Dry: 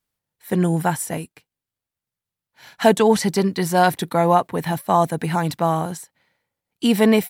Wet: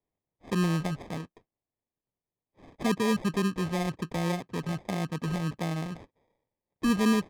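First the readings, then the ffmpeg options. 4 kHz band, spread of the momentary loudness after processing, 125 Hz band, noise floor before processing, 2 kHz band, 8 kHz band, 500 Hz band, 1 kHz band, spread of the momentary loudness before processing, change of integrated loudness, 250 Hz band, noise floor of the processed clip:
-9.0 dB, 10 LU, -7.0 dB, under -85 dBFS, -9.0 dB, -12.0 dB, -14.5 dB, -16.0 dB, 9 LU, -10.5 dB, -7.5 dB, under -85 dBFS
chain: -filter_complex "[0:a]acrossover=split=400[s0][s1];[s1]acompressor=threshold=0.0282:ratio=12[s2];[s0][s2]amix=inputs=2:normalize=0,acrusher=samples=31:mix=1:aa=0.000001,adynamicsmooth=sensitivity=4.5:basefreq=3900,volume=0.473"

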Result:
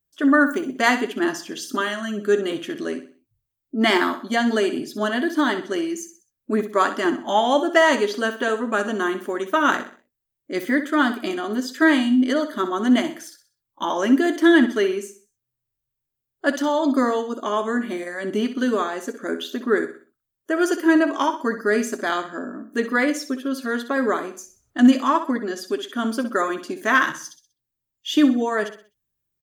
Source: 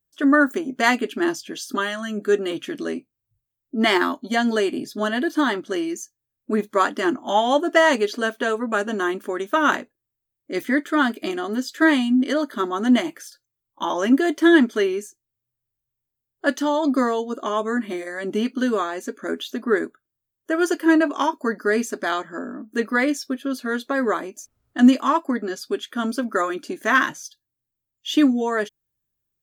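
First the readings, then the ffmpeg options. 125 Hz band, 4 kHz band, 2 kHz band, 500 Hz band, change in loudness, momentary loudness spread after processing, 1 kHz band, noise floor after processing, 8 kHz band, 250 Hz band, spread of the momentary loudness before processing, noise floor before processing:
no reading, +0.5 dB, +0.5 dB, +0.5 dB, +0.5 dB, 12 LU, +0.5 dB, -83 dBFS, +0.5 dB, +0.5 dB, 12 LU, -83 dBFS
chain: -af "aecho=1:1:63|126|189|252:0.282|0.104|0.0386|0.0143"

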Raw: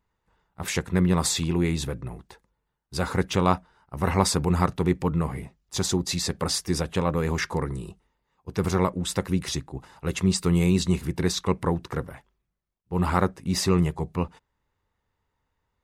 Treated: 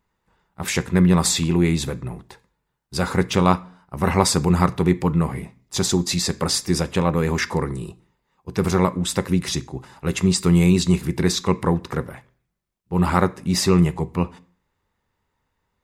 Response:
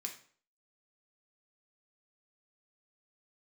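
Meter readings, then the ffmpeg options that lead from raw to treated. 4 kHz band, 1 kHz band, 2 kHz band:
+5.0 dB, +4.0 dB, +5.0 dB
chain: -filter_complex "[0:a]asplit=2[s0][s1];[1:a]atrim=start_sample=2205,lowshelf=f=200:g=11[s2];[s1][s2]afir=irnorm=-1:irlink=0,volume=0.422[s3];[s0][s3]amix=inputs=2:normalize=0,volume=1.33"

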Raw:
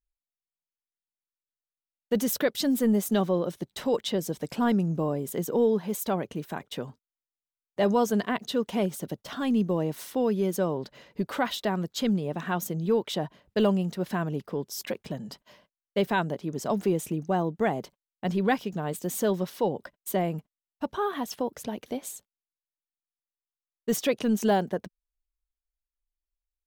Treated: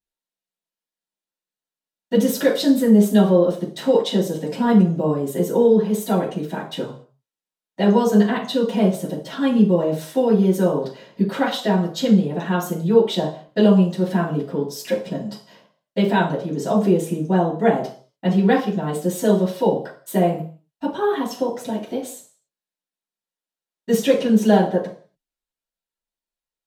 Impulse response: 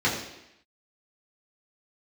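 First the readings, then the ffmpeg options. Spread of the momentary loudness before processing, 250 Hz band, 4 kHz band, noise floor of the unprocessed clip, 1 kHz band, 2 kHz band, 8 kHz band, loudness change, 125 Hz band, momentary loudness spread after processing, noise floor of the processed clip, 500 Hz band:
11 LU, +10.0 dB, +6.0 dB, under -85 dBFS, +6.0 dB, +5.5 dB, +2.5 dB, +9.0 dB, +9.5 dB, 13 LU, under -85 dBFS, +8.5 dB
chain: -filter_complex "[1:a]atrim=start_sample=2205,asetrate=83790,aresample=44100[s0];[0:a][s0]afir=irnorm=-1:irlink=0,volume=0.668"

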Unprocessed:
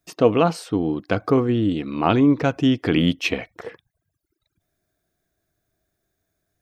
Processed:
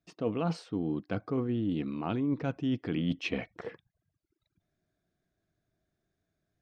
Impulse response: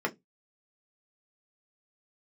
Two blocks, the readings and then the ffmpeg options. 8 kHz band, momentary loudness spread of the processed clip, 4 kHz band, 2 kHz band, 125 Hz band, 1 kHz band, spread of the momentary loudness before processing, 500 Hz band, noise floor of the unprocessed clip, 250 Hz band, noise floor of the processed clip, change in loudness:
under -15 dB, 5 LU, -14.5 dB, -13.0 dB, -10.5 dB, -16.0 dB, 10 LU, -14.5 dB, -78 dBFS, -11.5 dB, -84 dBFS, -12.5 dB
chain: -af "lowpass=5300,equalizer=f=180:w=0.9:g=6.5,areverse,acompressor=threshold=0.0794:ratio=4,areverse,volume=0.447"

